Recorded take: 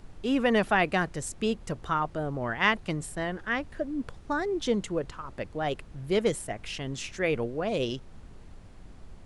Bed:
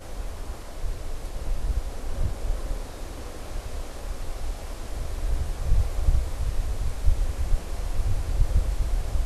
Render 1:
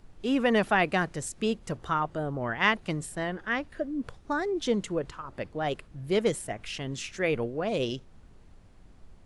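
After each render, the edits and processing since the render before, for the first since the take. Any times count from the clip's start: noise print and reduce 6 dB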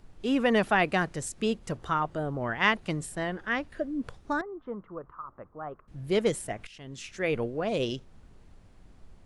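4.41–5.88 s: four-pole ladder low-pass 1.3 kHz, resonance 70%; 6.67–7.39 s: fade in, from -17.5 dB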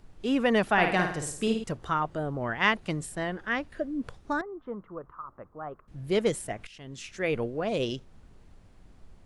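0.72–1.64 s: flutter echo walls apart 9.3 m, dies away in 0.56 s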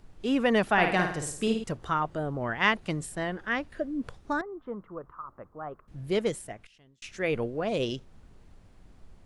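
6.01–7.02 s: fade out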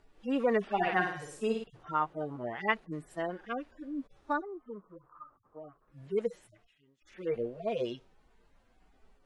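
harmonic-percussive separation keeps harmonic; tone controls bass -12 dB, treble -6 dB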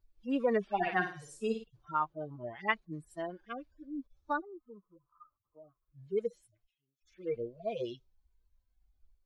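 expander on every frequency bin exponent 1.5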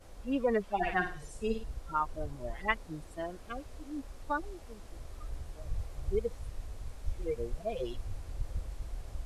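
add bed -14.5 dB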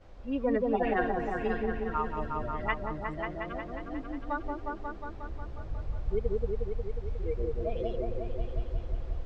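distance through air 180 m; delay with an opening low-pass 180 ms, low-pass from 750 Hz, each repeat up 1 oct, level 0 dB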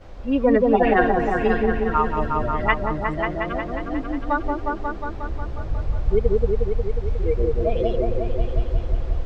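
trim +11 dB

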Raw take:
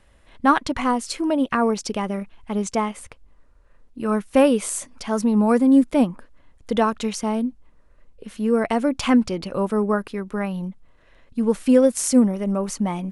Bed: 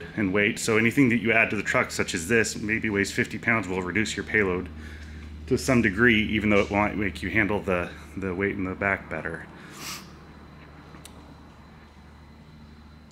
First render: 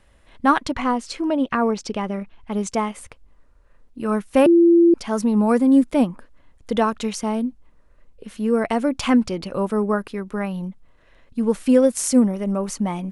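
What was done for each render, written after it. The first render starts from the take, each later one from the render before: 0.71–2.52 s: distance through air 63 m; 4.46–4.94 s: bleep 340 Hz -9.5 dBFS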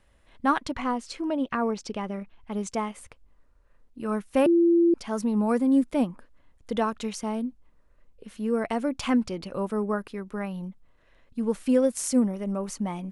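trim -6.5 dB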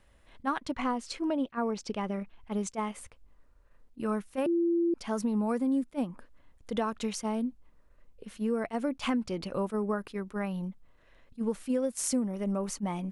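compression 5:1, threshold -26 dBFS, peak gain reduction 9 dB; attacks held to a fixed rise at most 470 dB/s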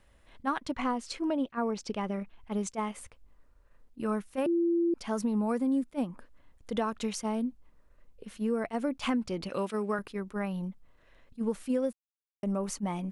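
9.49–9.99 s: frequency weighting D; 11.93–12.43 s: mute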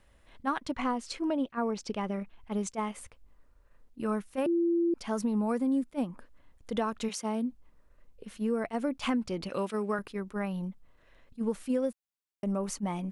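7.08–7.48 s: high-pass 300 Hz -> 87 Hz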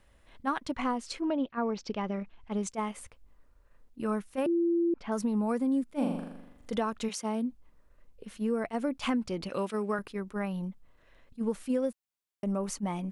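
1.20–2.61 s: low-pass 4.4 kHz -> 8.3 kHz 24 dB/octave; 4.49–5.12 s: low-pass 2.6 kHz; 5.85–6.75 s: flutter echo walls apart 7 m, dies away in 0.91 s

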